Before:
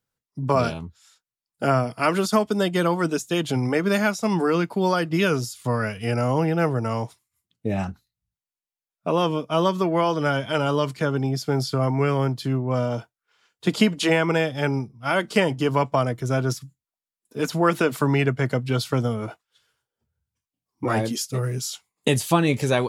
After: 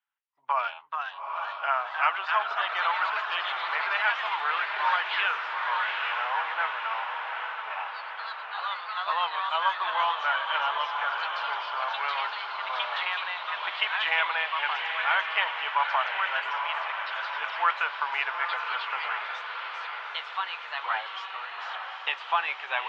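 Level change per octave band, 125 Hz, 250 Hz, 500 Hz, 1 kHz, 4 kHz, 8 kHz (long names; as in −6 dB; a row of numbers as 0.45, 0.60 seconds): below −40 dB, below −40 dB, −17.5 dB, +1.0 dB, +0.5 dB, below −25 dB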